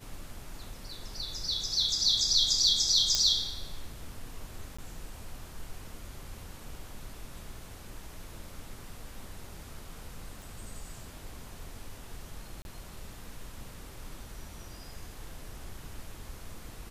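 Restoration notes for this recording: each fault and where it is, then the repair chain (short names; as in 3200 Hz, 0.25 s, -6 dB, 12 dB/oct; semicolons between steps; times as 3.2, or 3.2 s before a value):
3.15 pop -11 dBFS
4.77–4.79 gap 15 ms
10.42 pop
12.62–12.65 gap 31 ms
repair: de-click; interpolate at 4.77, 15 ms; interpolate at 12.62, 31 ms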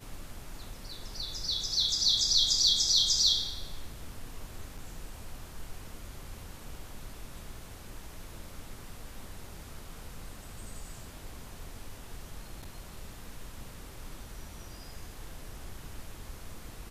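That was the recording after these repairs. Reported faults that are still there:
none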